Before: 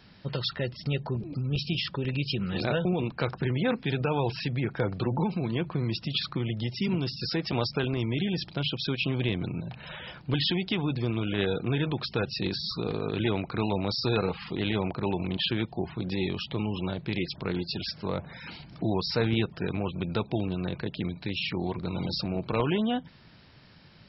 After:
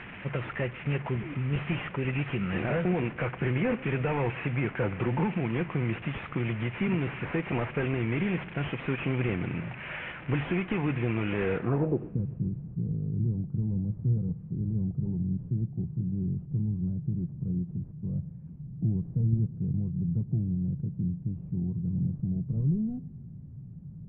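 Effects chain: one-bit delta coder 16 kbps, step -39 dBFS; low-pass sweep 2.3 kHz -> 150 Hz, 11.54–12.23 s; modulated delay 127 ms, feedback 60%, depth 73 cents, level -22 dB

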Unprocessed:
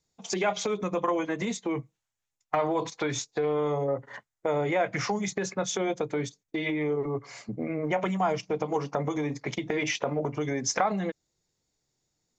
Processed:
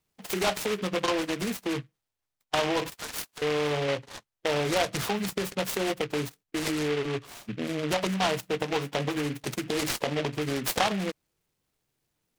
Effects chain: 2.92–3.42 s: high-pass 1.5 kHz 12 dB/octave; delay time shaken by noise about 2 kHz, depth 0.13 ms

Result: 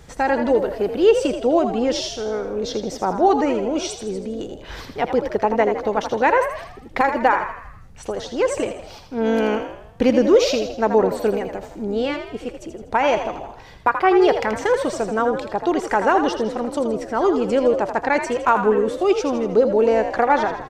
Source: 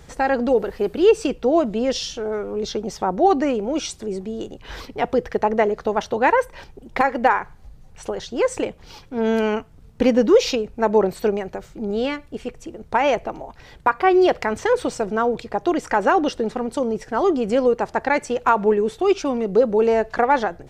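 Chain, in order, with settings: frequency-shifting echo 81 ms, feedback 49%, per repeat +52 Hz, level -8.5 dB

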